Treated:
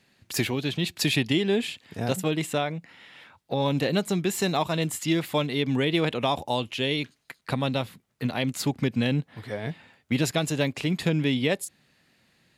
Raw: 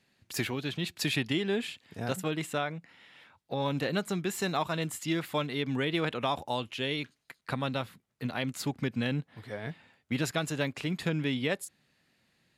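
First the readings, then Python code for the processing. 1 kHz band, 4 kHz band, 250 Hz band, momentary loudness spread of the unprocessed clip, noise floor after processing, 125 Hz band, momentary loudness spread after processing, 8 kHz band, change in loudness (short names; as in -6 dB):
+4.0 dB, +6.0 dB, +6.5 dB, 10 LU, -69 dBFS, +6.5 dB, 10 LU, +6.5 dB, +6.0 dB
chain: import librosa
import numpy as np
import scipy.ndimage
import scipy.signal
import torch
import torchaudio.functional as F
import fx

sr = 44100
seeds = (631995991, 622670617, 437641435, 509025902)

y = fx.dynamic_eq(x, sr, hz=1400.0, q=1.7, threshold_db=-49.0, ratio=4.0, max_db=-7)
y = y * librosa.db_to_amplitude(6.5)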